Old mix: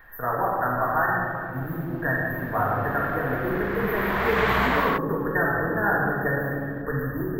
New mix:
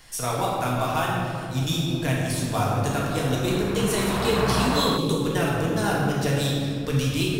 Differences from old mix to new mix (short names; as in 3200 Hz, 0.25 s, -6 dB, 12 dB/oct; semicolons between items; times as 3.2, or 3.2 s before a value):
speech: remove brick-wall FIR band-stop 1900–12000 Hz; master: add graphic EQ 125/250/2000/4000/8000 Hz +6/+3/-9/-12/+3 dB